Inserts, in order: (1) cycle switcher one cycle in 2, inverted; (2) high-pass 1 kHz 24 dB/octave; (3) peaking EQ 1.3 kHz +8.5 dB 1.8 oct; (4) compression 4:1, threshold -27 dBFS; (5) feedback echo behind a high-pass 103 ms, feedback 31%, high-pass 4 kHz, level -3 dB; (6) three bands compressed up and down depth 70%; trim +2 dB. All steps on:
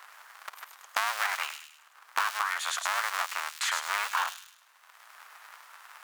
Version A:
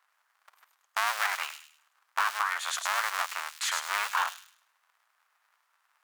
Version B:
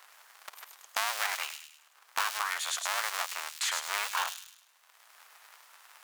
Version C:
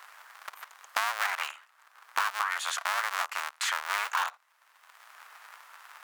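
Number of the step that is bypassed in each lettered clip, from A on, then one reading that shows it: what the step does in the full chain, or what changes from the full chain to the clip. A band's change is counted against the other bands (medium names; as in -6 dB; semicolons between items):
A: 6, momentary loudness spread change -13 LU; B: 3, 1 kHz band -4.0 dB; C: 5, 8 kHz band -2.0 dB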